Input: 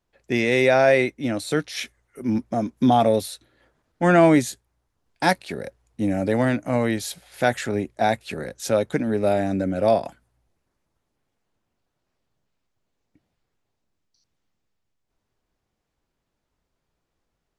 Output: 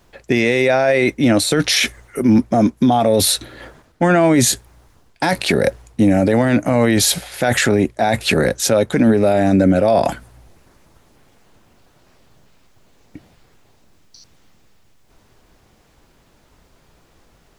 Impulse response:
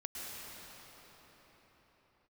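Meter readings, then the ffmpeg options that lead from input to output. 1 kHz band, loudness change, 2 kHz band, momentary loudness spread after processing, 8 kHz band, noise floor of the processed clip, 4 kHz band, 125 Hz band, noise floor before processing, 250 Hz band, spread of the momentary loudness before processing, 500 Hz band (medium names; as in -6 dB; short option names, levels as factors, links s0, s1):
+3.5 dB, +6.0 dB, +5.5 dB, 6 LU, +15.5 dB, -55 dBFS, +12.5 dB, +7.5 dB, -79 dBFS, +7.5 dB, 16 LU, +5.0 dB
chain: -af "areverse,acompressor=threshold=0.0251:ratio=4,areverse,alimiter=level_in=26.6:limit=0.891:release=50:level=0:latency=1,volume=0.596"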